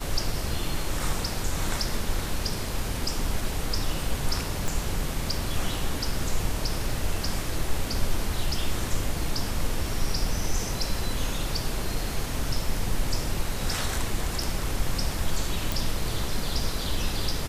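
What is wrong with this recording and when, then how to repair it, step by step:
4.68 pop
15.72 pop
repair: de-click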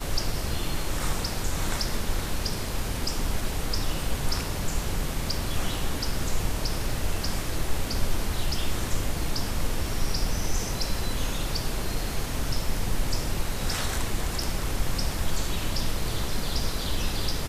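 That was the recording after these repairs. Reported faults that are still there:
4.68 pop

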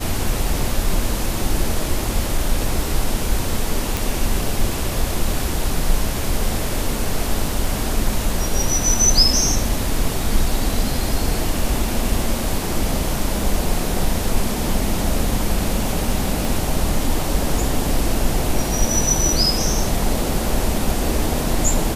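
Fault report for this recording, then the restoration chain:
3.97 pop
16.45 pop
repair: de-click

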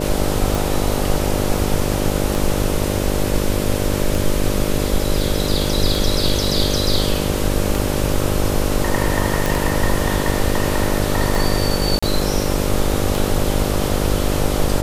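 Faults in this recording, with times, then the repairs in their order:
buzz 50 Hz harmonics 12 -22 dBFS
tick 33 1/3 rpm
9.46 pop
11.99–12.03 gap 35 ms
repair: de-click; de-hum 50 Hz, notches 12; interpolate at 11.99, 35 ms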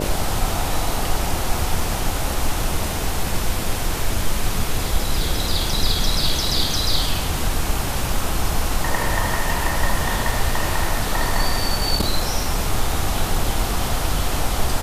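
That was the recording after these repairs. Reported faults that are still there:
none

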